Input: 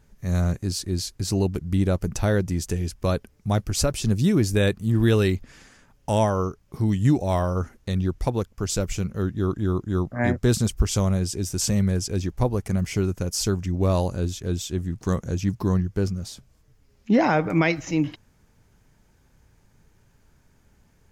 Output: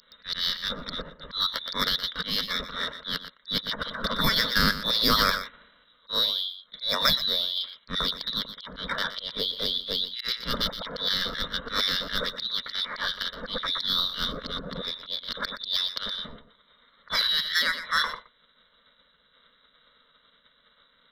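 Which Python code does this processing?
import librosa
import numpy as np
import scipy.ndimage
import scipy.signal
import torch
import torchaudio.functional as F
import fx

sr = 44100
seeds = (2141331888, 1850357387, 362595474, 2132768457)

p1 = fx.freq_invert(x, sr, carrier_hz=3700)
p2 = fx.auto_swell(p1, sr, attack_ms=108.0)
p3 = 10.0 ** (-16.5 / 20.0) * np.tanh(p2 / 10.0 ** (-16.5 / 20.0))
p4 = p2 + F.gain(torch.from_numpy(p3), -12.0).numpy()
p5 = p4 + 10.0 ** (-12.0 / 20.0) * np.pad(p4, (int(120 * sr / 1000.0), 0))[:len(p4)]
p6 = fx.formant_shift(p5, sr, semitones=5)
y = fx.fixed_phaser(p6, sr, hz=520.0, stages=8)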